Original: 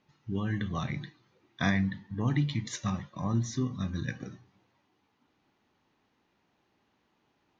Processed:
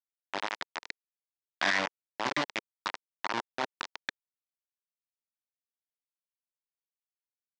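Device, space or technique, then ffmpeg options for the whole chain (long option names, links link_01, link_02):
hand-held game console: -af "acrusher=bits=3:mix=0:aa=0.000001,highpass=440,equalizer=frequency=460:width_type=q:width=4:gain=-8,equalizer=frequency=940:width_type=q:width=4:gain=4,equalizer=frequency=1900:width_type=q:width=4:gain=3,lowpass=frequency=5400:width=0.5412,lowpass=frequency=5400:width=1.3066"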